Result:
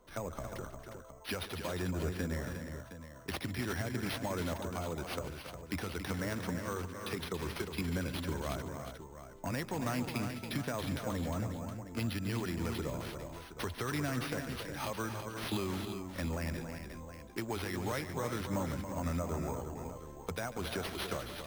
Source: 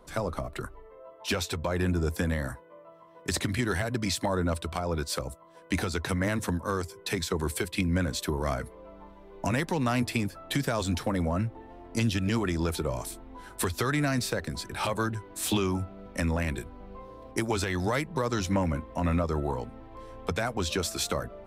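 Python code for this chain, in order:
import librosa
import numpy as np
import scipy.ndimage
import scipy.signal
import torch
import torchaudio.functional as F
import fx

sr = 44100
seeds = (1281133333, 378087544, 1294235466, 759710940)

y = fx.echo_multitap(x, sr, ms=(144, 278, 357, 716), db=(-15.5, -8.5, -8.0, -12.0))
y = np.repeat(y[::6], 6)[:len(y)]
y = y * 10.0 ** (-9.0 / 20.0)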